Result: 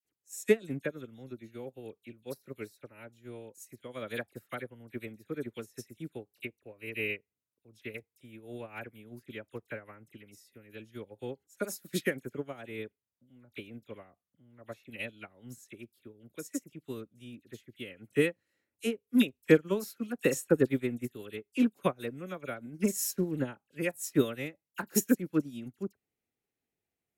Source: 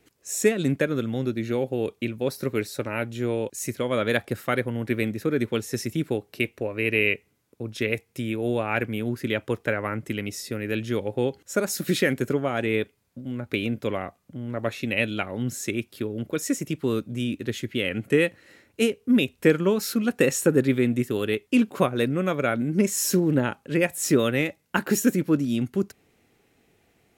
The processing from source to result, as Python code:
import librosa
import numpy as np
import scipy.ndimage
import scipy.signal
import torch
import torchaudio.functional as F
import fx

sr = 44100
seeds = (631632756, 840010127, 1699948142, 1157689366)

y = fx.high_shelf(x, sr, hz=8500.0, db=9.5)
y = fx.dispersion(y, sr, late='lows', ms=49.0, hz=2400.0)
y = fx.upward_expand(y, sr, threshold_db=-31.0, expansion=2.5)
y = y * 10.0 ** (-1.5 / 20.0)